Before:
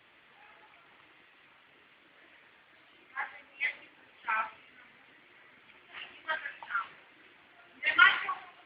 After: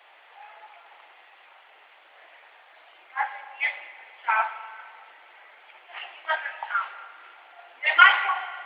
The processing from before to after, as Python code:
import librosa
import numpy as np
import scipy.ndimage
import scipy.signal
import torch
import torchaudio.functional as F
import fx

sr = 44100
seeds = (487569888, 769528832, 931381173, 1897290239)

y = scipy.signal.sosfilt(scipy.signal.butter(4, 480.0, 'highpass', fs=sr, output='sos'), x)
y = fx.peak_eq(y, sr, hz=780.0, db=10.5, octaves=0.62)
y = fx.rev_spring(y, sr, rt60_s=2.0, pass_ms=(37, 56), chirp_ms=55, drr_db=12.0)
y = F.gain(torch.from_numpy(y), 5.5).numpy()